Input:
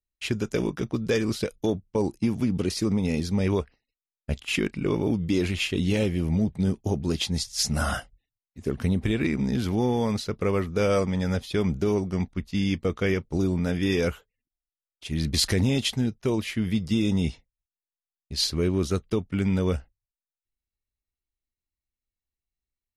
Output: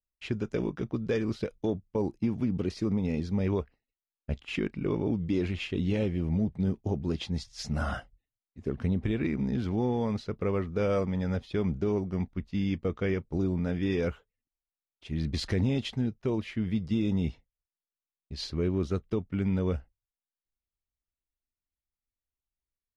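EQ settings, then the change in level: tape spacing loss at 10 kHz 20 dB; -3.5 dB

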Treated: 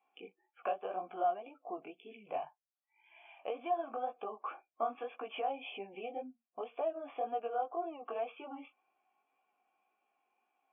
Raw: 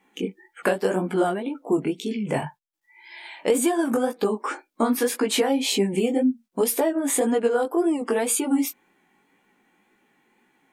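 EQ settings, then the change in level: vowel filter a; brick-wall FIR low-pass 3.5 kHz; bass shelf 200 Hz -9.5 dB; -2.5 dB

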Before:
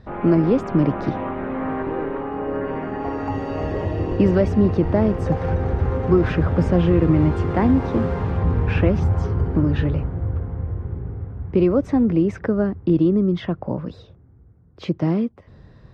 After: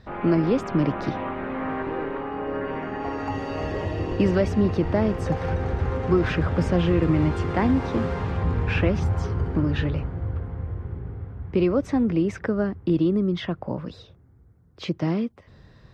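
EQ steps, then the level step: tilt shelf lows -4.5 dB, about 1.5 kHz; 0.0 dB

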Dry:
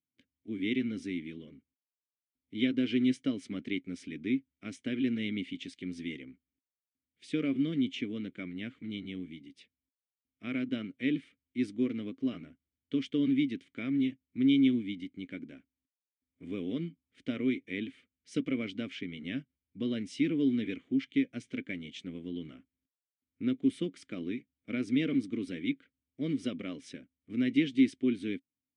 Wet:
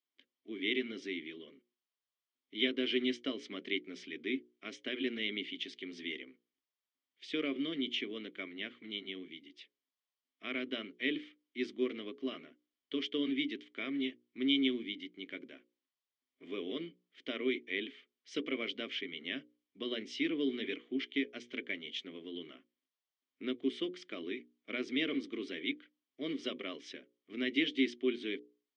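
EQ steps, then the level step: cabinet simulation 340–5600 Hz, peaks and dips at 390 Hz +8 dB, 660 Hz +5 dB, 1.1 kHz +8 dB, 1.9 kHz +5 dB, 3.2 kHz +7 dB; treble shelf 3.4 kHz +7 dB; hum notches 60/120/180/240/300/360/420/480/540 Hz; -3.0 dB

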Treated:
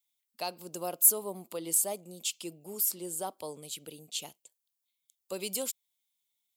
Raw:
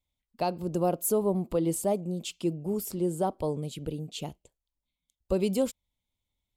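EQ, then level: high-pass 120 Hz; tilt EQ +4.5 dB/octave; -5.5 dB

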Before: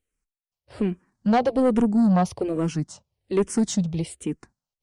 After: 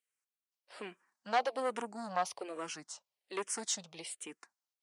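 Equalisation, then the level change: high-pass 890 Hz 12 dB/octave; -3.5 dB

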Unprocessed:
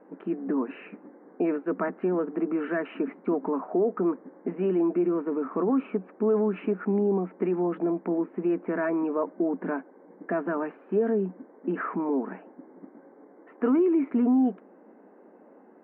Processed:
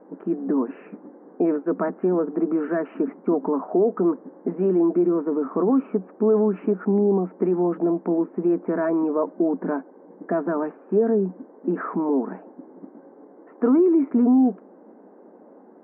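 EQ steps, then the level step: low-pass 1.2 kHz 12 dB/octave; +5.0 dB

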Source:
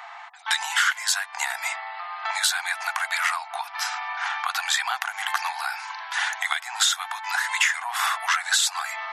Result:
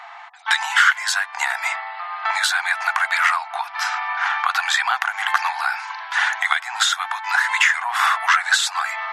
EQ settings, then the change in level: treble shelf 8.4 kHz -9 dB; dynamic bell 1.4 kHz, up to +6 dB, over -36 dBFS, Q 0.82; +2.0 dB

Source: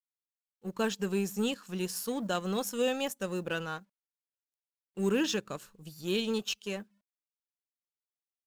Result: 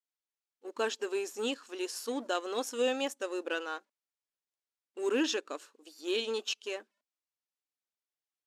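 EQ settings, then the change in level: brick-wall FIR high-pass 240 Hz; low-pass 8.3 kHz 12 dB/octave; 0.0 dB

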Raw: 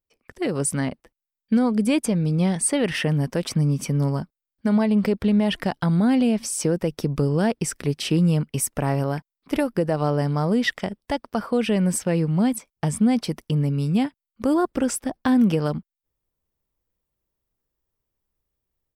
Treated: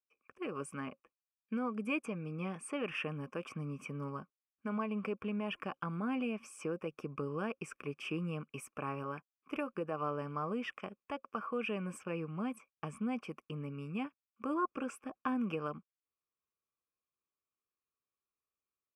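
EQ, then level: vowel filter a; band-stop 540 Hz, Q 18; static phaser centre 1.7 kHz, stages 4; +7.5 dB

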